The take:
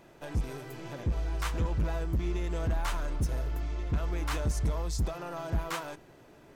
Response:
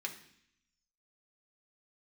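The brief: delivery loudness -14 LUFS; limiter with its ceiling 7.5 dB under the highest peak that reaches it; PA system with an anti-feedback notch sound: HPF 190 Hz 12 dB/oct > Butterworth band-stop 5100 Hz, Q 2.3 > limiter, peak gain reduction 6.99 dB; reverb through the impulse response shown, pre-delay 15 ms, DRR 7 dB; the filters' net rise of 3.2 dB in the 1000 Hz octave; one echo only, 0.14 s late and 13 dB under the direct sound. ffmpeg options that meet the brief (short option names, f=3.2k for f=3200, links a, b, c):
-filter_complex "[0:a]equalizer=f=1k:t=o:g=4,alimiter=level_in=5dB:limit=-24dB:level=0:latency=1,volume=-5dB,aecho=1:1:140:0.224,asplit=2[a][b];[1:a]atrim=start_sample=2205,adelay=15[c];[b][c]afir=irnorm=-1:irlink=0,volume=-7.5dB[d];[a][d]amix=inputs=2:normalize=0,highpass=190,asuperstop=centerf=5100:order=8:qfactor=2.3,volume=29.5dB,alimiter=limit=-3.5dB:level=0:latency=1"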